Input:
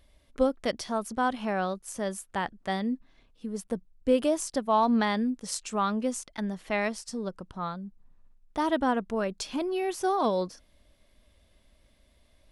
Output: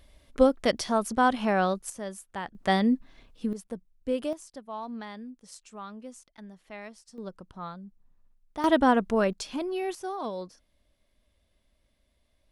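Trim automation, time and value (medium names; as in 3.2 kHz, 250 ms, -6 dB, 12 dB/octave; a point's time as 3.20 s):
+4.5 dB
from 1.90 s -5 dB
from 2.55 s +6.5 dB
from 3.53 s -5.5 dB
from 4.33 s -14 dB
from 7.18 s -5 dB
from 8.64 s +5 dB
from 9.33 s -1.5 dB
from 9.95 s -8 dB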